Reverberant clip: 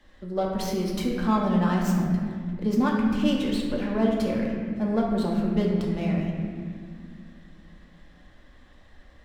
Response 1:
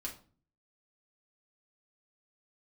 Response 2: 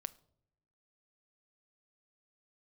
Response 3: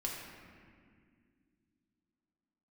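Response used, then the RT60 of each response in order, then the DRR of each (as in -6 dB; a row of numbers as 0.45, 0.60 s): 3; 0.40 s, not exponential, 2.1 s; -2.5, 14.5, -3.0 dB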